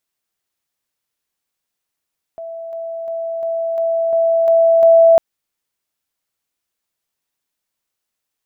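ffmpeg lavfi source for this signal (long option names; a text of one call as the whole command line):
ffmpeg -f lavfi -i "aevalsrc='pow(10,(-26.5+3*floor(t/0.35))/20)*sin(2*PI*662*t)':duration=2.8:sample_rate=44100" out.wav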